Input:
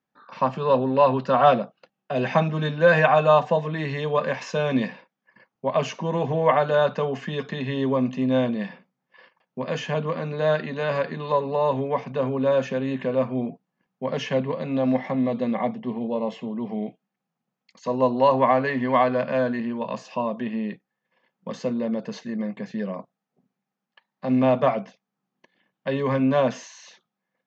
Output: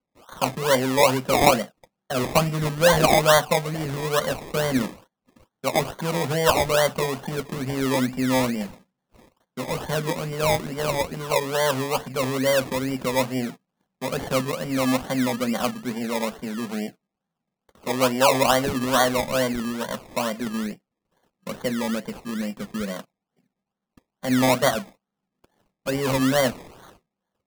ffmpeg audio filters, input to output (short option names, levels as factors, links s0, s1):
-af "acrusher=samples=24:mix=1:aa=0.000001:lfo=1:lforange=14.4:lforate=2.3"